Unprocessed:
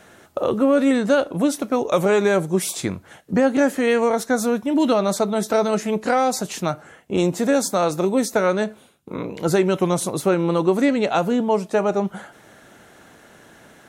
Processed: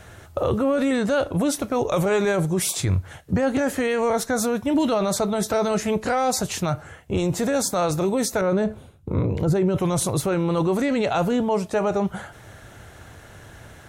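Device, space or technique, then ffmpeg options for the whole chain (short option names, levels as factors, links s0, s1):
car stereo with a boomy subwoofer: -filter_complex "[0:a]asettb=1/sr,asplit=3[s0][s1][s2];[s0]atrim=end=8.414[s3];[s1]atrim=start=8.41:end=9.78,asetpts=PTS-STARTPTS,afade=t=in:d=0.004:c=qsin,afade=t=out:st=1.366:d=0.004:c=qsin,tiltshelf=f=920:g=6.5[s4];[s2]atrim=start=9.776[s5];[s3][s4]acrossfade=d=0.004:c1=hsin:c2=qsin[s6];[s6][s5]acrossfade=d=0.004:c1=qsin:c2=hsin,lowshelf=f=140:t=q:w=1.5:g=13.5,alimiter=limit=0.168:level=0:latency=1:release=13,volume=1.26"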